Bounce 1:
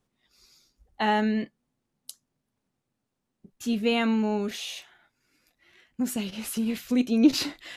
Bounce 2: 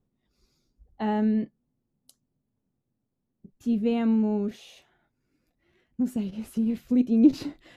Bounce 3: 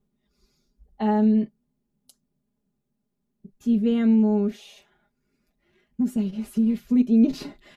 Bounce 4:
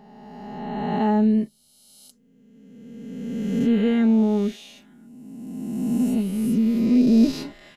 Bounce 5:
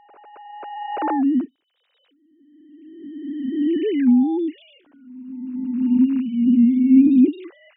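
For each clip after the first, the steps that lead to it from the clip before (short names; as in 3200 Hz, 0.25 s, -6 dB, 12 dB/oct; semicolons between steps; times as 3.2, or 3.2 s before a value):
tilt shelf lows +9.5 dB, about 740 Hz; gain -5.5 dB
comb 4.9 ms, depth 79%
spectral swells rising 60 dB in 2.10 s
sine-wave speech; gain +2.5 dB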